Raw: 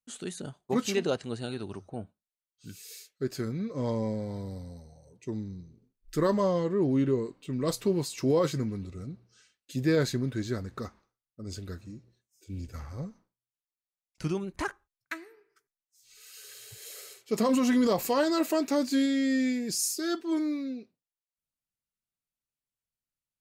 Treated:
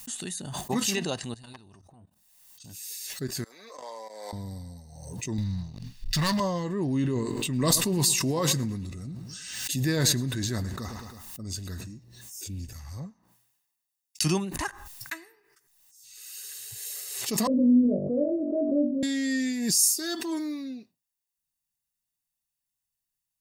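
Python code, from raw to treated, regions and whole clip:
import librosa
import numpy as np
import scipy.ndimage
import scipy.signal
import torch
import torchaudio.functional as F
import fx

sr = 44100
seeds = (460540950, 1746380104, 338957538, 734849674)

y = fx.chain(x, sr, fx.level_steps(step_db=17),
    fx.transformer_sat(knee_hz=1900.0), at=(1.34, 2.82))
y = fx.chain(y, sr, fx.highpass(hz=510.0, slope=24),
    fx.level_steps(step_db=19), at=(3.44, 4.33))
y = fx.chain(y, sr, fx.curve_eq(hz=(160.0, 350.0, 2300.0, 4600.0, 7900.0, 14000.0), db=(0, -16, 3, 5, -11, -15)),
    fx.leveller(passes=3), at=(5.38, 6.4))
y = fx.chain(y, sr, fx.echo_feedback(ms=107, feedback_pct=35, wet_db=-19),
    fx.sustainer(db_per_s=35.0), at=(6.99, 11.94))
y = fx.chain(y, sr, fx.highpass(hz=120.0, slope=6),
    fx.band_widen(depth_pct=100), at=(12.73, 14.57))
y = fx.chain(y, sr, fx.steep_lowpass(hz=620.0, slope=96),
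    fx.room_flutter(wall_m=3.5, rt60_s=0.39),
    fx.band_squash(depth_pct=40), at=(17.47, 19.03))
y = fx.high_shelf(y, sr, hz=4700.0, db=11.5)
y = y + 0.48 * np.pad(y, (int(1.1 * sr / 1000.0), 0))[:len(y)]
y = fx.pre_swell(y, sr, db_per_s=42.0)
y = F.gain(torch.from_numpy(y), -1.5).numpy()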